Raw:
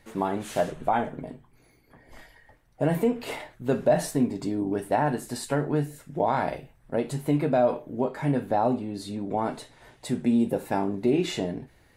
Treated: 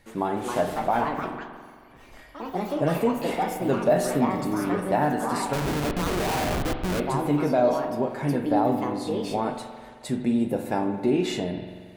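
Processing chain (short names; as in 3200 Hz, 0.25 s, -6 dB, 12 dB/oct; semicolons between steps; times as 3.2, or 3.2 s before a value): echoes that change speed 0.314 s, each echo +4 st, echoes 3, each echo -6 dB; 5.53–7 Schmitt trigger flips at -32 dBFS; spring tank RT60 1.8 s, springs 44 ms, chirp 40 ms, DRR 6.5 dB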